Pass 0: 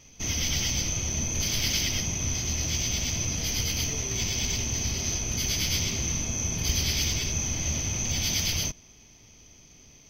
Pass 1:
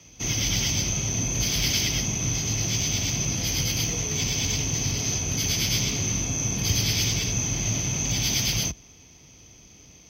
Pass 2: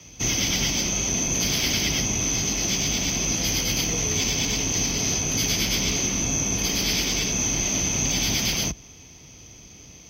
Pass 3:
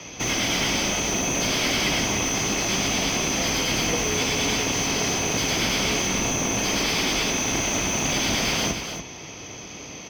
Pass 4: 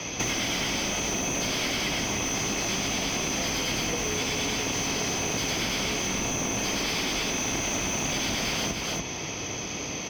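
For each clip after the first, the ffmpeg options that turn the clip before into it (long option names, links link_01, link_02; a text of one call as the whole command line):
ffmpeg -i in.wav -af "afreqshift=34,volume=2.5dB" out.wav
ffmpeg -i in.wav -filter_complex "[0:a]afftfilt=real='re*lt(hypot(re,im),0.282)':imag='im*lt(hypot(re,im),0.282)':win_size=1024:overlap=0.75,acrossover=split=620|2300[link_01][link_02][link_03];[link_03]alimiter=limit=-20dB:level=0:latency=1:release=236[link_04];[link_01][link_02][link_04]amix=inputs=3:normalize=0,volume=4.5dB" out.wav
ffmpeg -i in.wav -filter_complex "[0:a]asplit=2[link_01][link_02];[link_02]highpass=frequency=720:poles=1,volume=24dB,asoftclip=type=tanh:threshold=-9.5dB[link_03];[link_01][link_03]amix=inputs=2:normalize=0,lowpass=frequency=1300:poles=1,volume=-6dB,asplit=2[link_04][link_05];[link_05]aecho=0:1:72.89|288.6:0.282|0.398[link_06];[link_04][link_06]amix=inputs=2:normalize=0" out.wav
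ffmpeg -i in.wav -af "acompressor=threshold=-31dB:ratio=6,volume=5dB" out.wav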